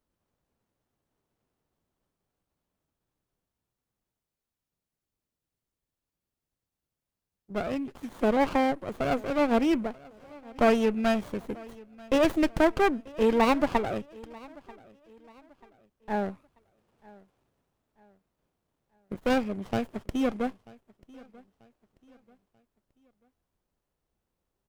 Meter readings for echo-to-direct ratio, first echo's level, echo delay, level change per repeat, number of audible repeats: −22.5 dB, −23.0 dB, 938 ms, −8.5 dB, 2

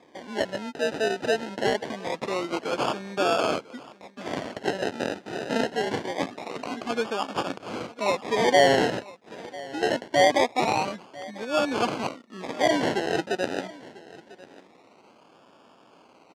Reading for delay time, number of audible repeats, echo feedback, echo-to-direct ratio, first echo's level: 996 ms, 1, repeats not evenly spaced, −20.0 dB, −20.0 dB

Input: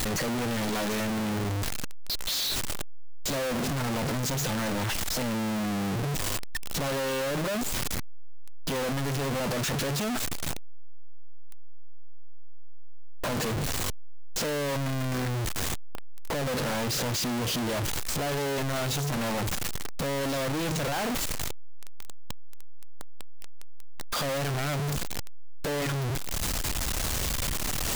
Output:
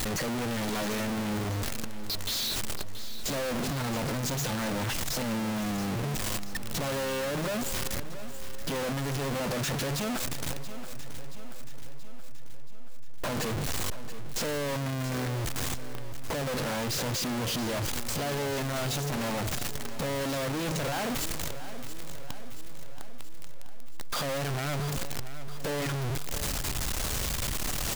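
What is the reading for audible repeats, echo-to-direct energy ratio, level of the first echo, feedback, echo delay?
5, −11.0 dB, −12.5 dB, 57%, 678 ms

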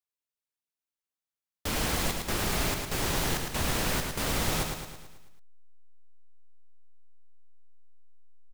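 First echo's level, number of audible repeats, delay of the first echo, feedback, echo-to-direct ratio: −5.0 dB, 6, 109 ms, 53%, −3.5 dB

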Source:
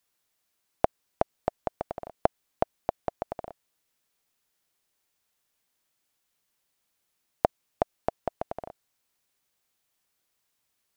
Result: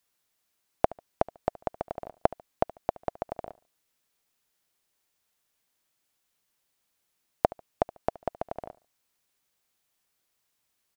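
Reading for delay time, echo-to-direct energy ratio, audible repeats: 72 ms, −20.0 dB, 2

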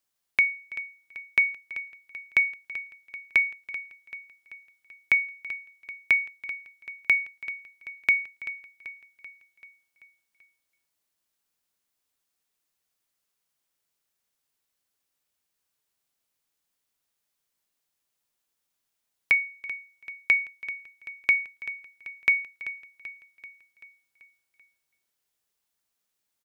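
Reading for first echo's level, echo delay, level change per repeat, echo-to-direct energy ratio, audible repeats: −14.5 dB, 386 ms, −5.0 dB, −13.0 dB, 5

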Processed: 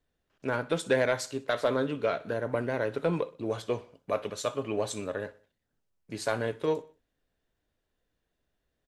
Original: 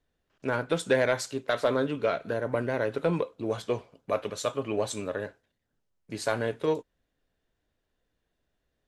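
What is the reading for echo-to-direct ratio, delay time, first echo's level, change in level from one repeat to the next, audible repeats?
−19.0 dB, 62 ms, −20.0 dB, −6.5 dB, 3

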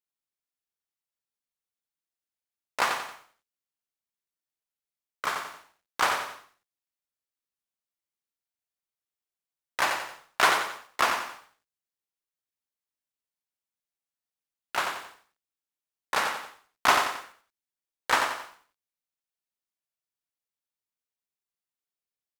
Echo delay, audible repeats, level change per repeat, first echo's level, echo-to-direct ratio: 90 ms, 3, −8.0 dB, −6.0 dB, −5.5 dB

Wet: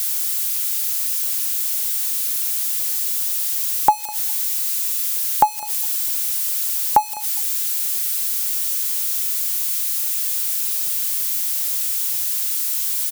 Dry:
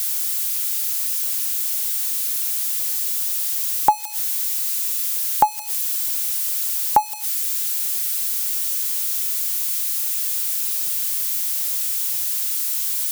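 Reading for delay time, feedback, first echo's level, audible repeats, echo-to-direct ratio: 204 ms, 27%, −22.0 dB, 2, −21.5 dB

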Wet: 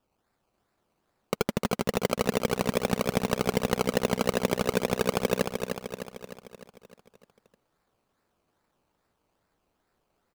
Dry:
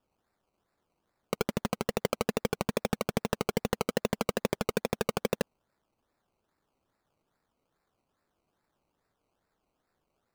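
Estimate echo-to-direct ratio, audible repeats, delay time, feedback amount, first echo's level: −4.5 dB, 6, 304 ms, 55%, −6.0 dB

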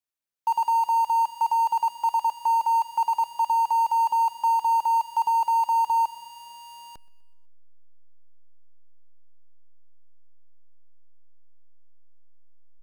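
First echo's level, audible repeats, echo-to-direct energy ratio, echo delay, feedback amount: −23.0 dB, 3, −21.5 dB, 125 ms, 58%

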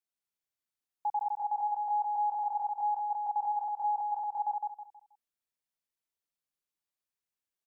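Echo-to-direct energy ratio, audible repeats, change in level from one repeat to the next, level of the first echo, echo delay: −2.5 dB, 4, −10.0 dB, −3.0 dB, 160 ms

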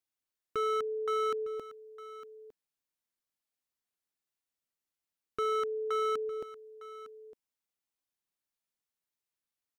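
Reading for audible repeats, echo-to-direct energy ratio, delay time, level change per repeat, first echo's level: 1, −16.0 dB, 907 ms, repeats not evenly spaced, −16.0 dB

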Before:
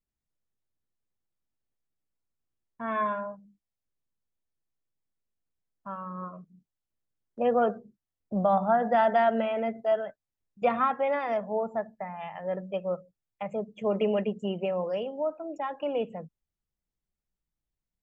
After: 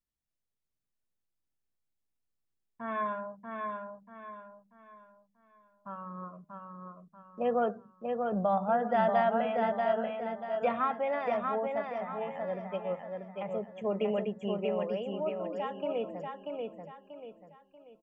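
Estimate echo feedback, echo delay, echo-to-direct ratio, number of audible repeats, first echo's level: 36%, 637 ms, −3.5 dB, 4, −4.0 dB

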